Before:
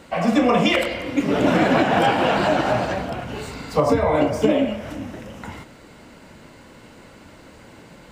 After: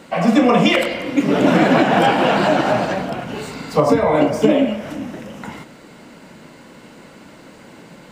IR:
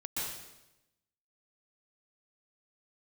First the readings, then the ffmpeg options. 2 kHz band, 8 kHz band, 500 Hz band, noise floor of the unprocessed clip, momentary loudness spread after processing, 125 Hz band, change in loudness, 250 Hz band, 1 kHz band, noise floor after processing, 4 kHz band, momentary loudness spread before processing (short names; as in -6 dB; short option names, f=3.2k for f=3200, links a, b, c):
+3.0 dB, +3.0 dB, +3.5 dB, -46 dBFS, 16 LU, +3.0 dB, +3.5 dB, +4.5 dB, +3.0 dB, -43 dBFS, +3.0 dB, 16 LU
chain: -af "lowshelf=f=120:t=q:w=1.5:g=-8.5,volume=3dB"